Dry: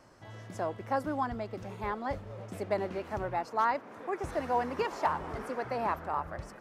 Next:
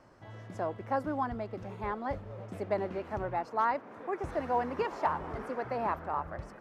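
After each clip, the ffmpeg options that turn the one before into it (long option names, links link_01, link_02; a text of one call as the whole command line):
ffmpeg -i in.wav -af "highshelf=frequency=3900:gain=-10.5" out.wav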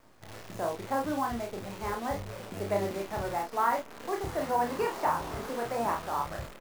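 ffmpeg -i in.wav -filter_complex "[0:a]acrusher=bits=8:dc=4:mix=0:aa=0.000001,asplit=2[link_01][link_02];[link_02]aecho=0:1:30|51:0.668|0.422[link_03];[link_01][link_03]amix=inputs=2:normalize=0" out.wav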